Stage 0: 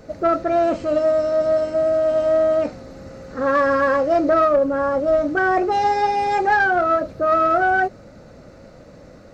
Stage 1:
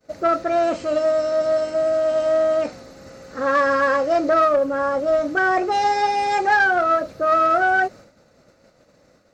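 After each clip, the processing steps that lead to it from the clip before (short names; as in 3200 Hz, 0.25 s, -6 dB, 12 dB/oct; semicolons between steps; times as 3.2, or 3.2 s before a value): expander -35 dBFS; tilt +2 dB/oct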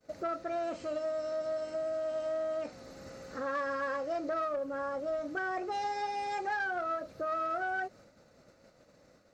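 compressor 2:1, threshold -34 dBFS, peak gain reduction 11.5 dB; gain -6 dB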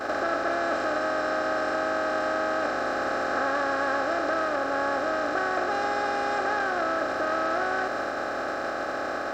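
per-bin compression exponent 0.2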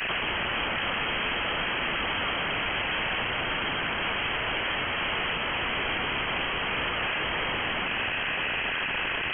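wrapped overs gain 24.5 dB; inverted band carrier 3200 Hz; gain +2.5 dB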